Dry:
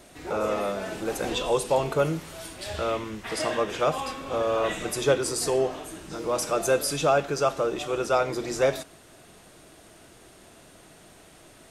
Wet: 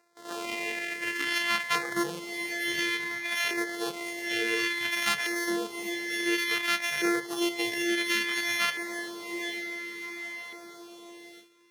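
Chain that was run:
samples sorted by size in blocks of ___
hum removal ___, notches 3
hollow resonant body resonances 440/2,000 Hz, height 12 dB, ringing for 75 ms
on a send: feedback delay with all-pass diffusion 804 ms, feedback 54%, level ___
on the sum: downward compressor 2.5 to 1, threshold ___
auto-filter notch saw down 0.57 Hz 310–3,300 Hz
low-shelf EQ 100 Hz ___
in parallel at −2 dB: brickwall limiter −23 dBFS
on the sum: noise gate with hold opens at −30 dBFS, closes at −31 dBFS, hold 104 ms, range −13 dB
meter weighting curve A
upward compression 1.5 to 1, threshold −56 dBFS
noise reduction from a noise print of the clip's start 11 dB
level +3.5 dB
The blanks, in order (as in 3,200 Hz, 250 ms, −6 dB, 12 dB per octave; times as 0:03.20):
128 samples, 134.8 Hz, −9.5 dB, −26 dBFS, −10.5 dB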